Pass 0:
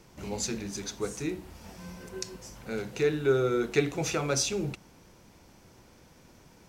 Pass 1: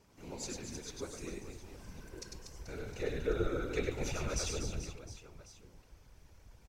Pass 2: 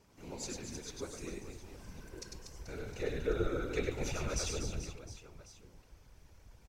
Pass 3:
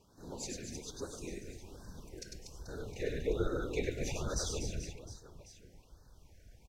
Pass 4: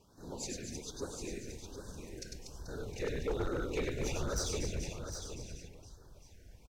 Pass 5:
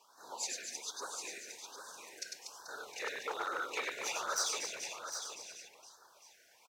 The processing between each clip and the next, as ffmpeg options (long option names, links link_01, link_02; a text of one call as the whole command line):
ffmpeg -i in.wav -af "aecho=1:1:100|240|436|710.4|1095:0.631|0.398|0.251|0.158|0.1,afftfilt=real='hypot(re,im)*cos(2*PI*random(0))':imag='hypot(re,im)*sin(2*PI*random(1))':win_size=512:overlap=0.75,asubboost=boost=7.5:cutoff=75,volume=-4.5dB" out.wav
ffmpeg -i in.wav -af anull out.wav
ffmpeg -i in.wav -af "afftfilt=real='re*(1-between(b*sr/1024,980*pow(2600/980,0.5+0.5*sin(2*PI*1.2*pts/sr))/1.41,980*pow(2600/980,0.5+0.5*sin(2*PI*1.2*pts/sr))*1.41))':imag='im*(1-between(b*sr/1024,980*pow(2600/980,0.5+0.5*sin(2*PI*1.2*pts/sr))/1.41,980*pow(2600/980,0.5+0.5*sin(2*PI*1.2*pts/sr))*1.41))':win_size=1024:overlap=0.75" out.wav
ffmpeg -i in.wav -filter_complex "[0:a]volume=30.5dB,asoftclip=hard,volume=-30.5dB,asplit=2[link_01][link_02];[link_02]aecho=0:1:757:0.398[link_03];[link_01][link_03]amix=inputs=2:normalize=0,volume=1dB" out.wav
ffmpeg -i in.wav -af "highpass=frequency=990:width_type=q:width=1.6,volume=4dB" out.wav